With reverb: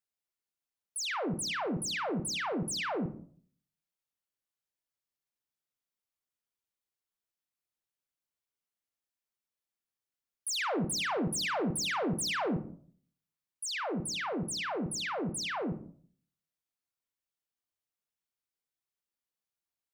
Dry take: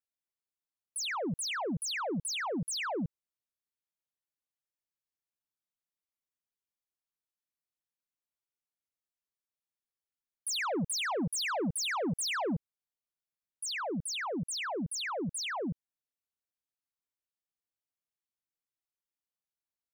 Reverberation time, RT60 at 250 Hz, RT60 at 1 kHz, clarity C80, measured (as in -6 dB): 0.50 s, 0.60 s, 0.45 s, 15.0 dB